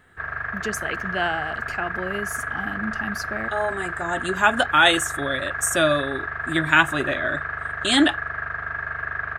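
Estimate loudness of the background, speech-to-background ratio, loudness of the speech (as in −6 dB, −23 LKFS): −28.5 LKFS, 5.5 dB, −23.0 LKFS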